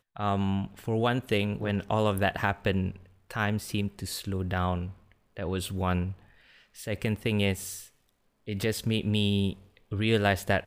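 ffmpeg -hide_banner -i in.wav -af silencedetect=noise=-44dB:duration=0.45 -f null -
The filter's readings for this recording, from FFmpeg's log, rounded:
silence_start: 6.19
silence_end: 6.76 | silence_duration: 0.57
silence_start: 7.87
silence_end: 8.48 | silence_duration: 0.61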